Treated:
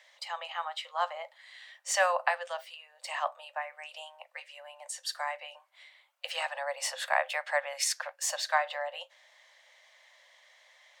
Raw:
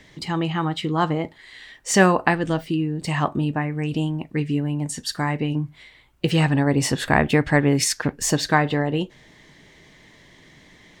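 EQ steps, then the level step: Chebyshev high-pass 520 Hz, order 10; -7.0 dB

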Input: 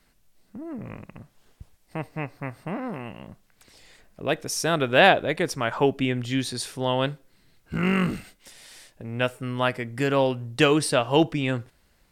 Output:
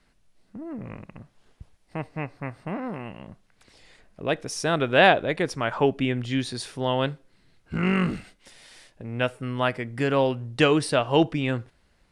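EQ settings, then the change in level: air absorption 73 m; bell 10000 Hz +8.5 dB 0.26 oct; 0.0 dB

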